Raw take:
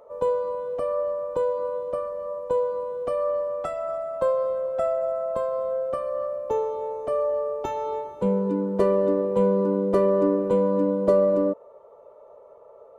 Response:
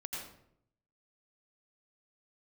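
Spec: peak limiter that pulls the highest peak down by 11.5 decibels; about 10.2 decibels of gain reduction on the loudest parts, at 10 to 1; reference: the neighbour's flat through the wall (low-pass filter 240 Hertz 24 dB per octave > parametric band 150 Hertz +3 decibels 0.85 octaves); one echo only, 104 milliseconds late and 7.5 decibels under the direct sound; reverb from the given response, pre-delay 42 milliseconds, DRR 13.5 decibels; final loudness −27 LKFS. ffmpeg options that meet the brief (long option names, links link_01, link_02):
-filter_complex "[0:a]acompressor=threshold=-25dB:ratio=10,alimiter=level_in=2dB:limit=-24dB:level=0:latency=1,volume=-2dB,aecho=1:1:104:0.422,asplit=2[link_01][link_02];[1:a]atrim=start_sample=2205,adelay=42[link_03];[link_02][link_03]afir=irnorm=-1:irlink=0,volume=-13.5dB[link_04];[link_01][link_04]amix=inputs=2:normalize=0,lowpass=frequency=240:width=0.5412,lowpass=frequency=240:width=1.3066,equalizer=frequency=150:width_type=o:width=0.85:gain=3,volume=12.5dB"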